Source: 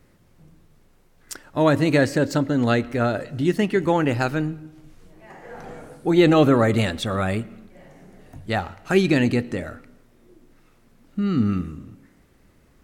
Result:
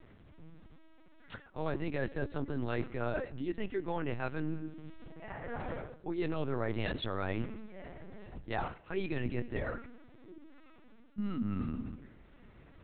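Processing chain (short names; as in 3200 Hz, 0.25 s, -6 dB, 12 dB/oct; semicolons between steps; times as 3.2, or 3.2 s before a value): reverse; compressor 6:1, threshold -33 dBFS, peak gain reduction 20.5 dB; reverse; LPC vocoder at 8 kHz pitch kept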